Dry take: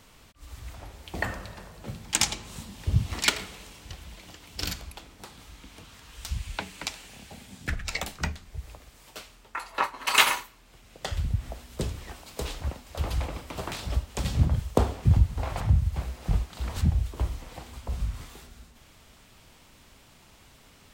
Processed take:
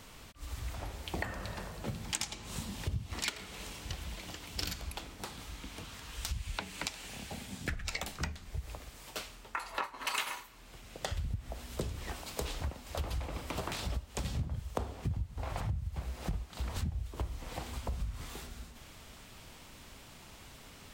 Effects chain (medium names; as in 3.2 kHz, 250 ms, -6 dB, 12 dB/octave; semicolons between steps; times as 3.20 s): compression 6:1, threshold -36 dBFS, peak gain reduction 21 dB; trim +2.5 dB